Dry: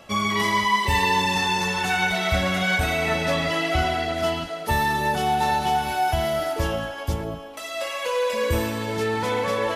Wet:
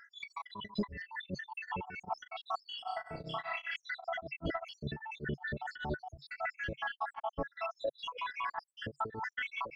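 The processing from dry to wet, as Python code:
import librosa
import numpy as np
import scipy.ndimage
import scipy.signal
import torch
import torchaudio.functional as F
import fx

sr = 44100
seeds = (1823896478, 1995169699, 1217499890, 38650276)

y = fx.spec_dropout(x, sr, seeds[0], share_pct=81)
y = fx.peak_eq(y, sr, hz=140.0, db=3.5, octaves=0.36)
y = fx.over_compress(y, sr, threshold_db=-37.0, ratio=-1.0)
y = 10.0 ** (-22.5 / 20.0) * np.tanh(y / 10.0 ** (-22.5 / 20.0))
y = fx.spacing_loss(y, sr, db_at_10k=43)
y = fx.room_flutter(y, sr, wall_m=5.3, rt60_s=0.47, at=(2.78, 3.76))
y = y * np.abs(np.cos(np.pi * 5.1 * np.arange(len(y)) / sr))
y = F.gain(torch.from_numpy(y), 6.0).numpy()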